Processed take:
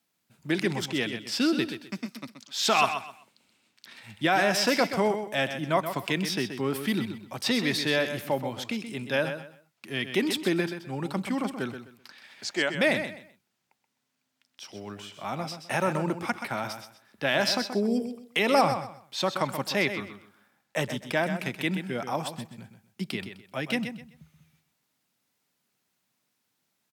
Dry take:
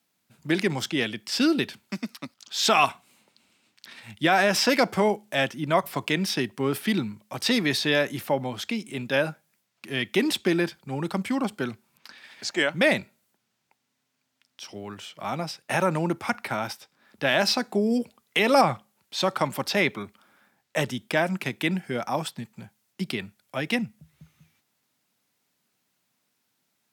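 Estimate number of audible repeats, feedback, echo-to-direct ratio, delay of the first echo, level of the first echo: 3, 25%, -8.5 dB, 128 ms, -9.0 dB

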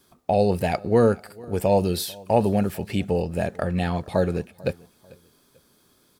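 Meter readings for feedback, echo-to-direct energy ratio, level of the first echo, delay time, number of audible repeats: 33%, -23.0 dB, -23.5 dB, 443 ms, 2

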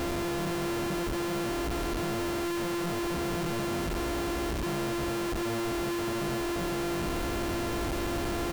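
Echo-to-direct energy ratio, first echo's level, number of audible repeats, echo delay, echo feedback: -13.5 dB, -13.5 dB, 1, 455 ms, 20%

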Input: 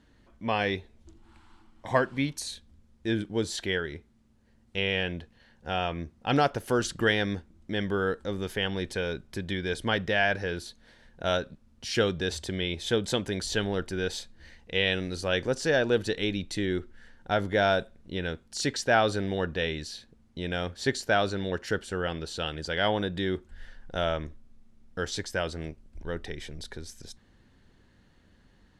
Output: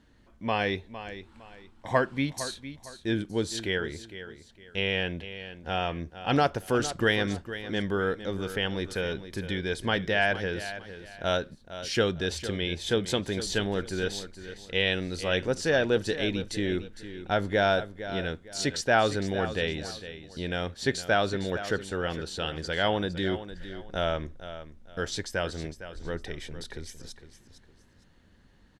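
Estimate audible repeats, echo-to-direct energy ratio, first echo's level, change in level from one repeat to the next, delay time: 2, -12.0 dB, -12.5 dB, -10.5 dB, 458 ms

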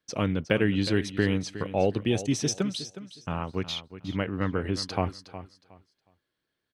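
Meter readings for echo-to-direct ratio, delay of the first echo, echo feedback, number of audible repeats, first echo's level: -13.5 dB, 364 ms, 22%, 2, -13.5 dB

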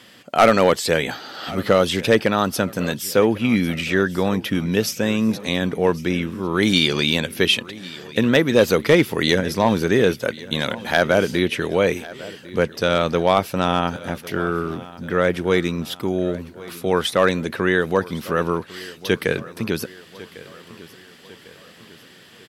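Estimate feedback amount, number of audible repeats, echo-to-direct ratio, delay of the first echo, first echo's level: 49%, 3, -18.0 dB, 1100 ms, -19.0 dB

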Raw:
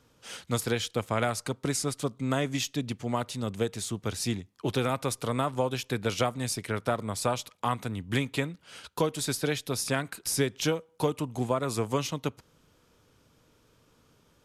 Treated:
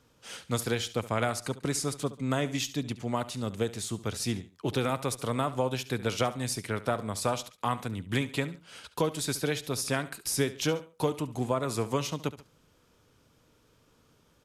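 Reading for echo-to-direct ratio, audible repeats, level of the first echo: -15.5 dB, 2, -16.0 dB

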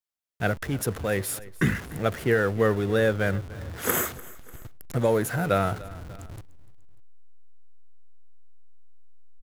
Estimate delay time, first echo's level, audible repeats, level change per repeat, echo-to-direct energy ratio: 296 ms, -20.0 dB, 2, -5.5 dB, -19.0 dB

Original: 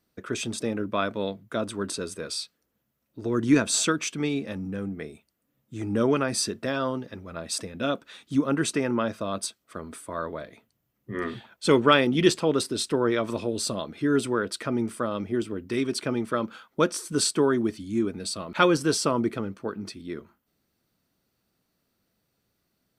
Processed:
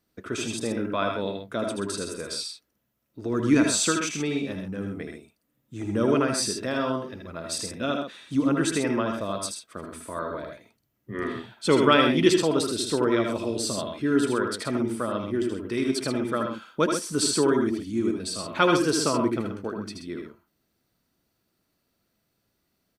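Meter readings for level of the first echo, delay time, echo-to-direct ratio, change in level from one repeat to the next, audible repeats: -4.5 dB, 77 ms, -3.0 dB, no regular repeats, 2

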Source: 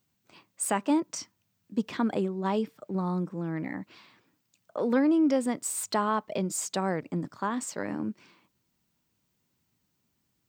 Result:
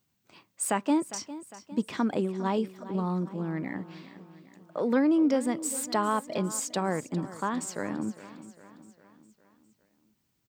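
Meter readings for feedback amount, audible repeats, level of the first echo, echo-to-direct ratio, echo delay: 53%, 4, -15.5 dB, -14.0 dB, 405 ms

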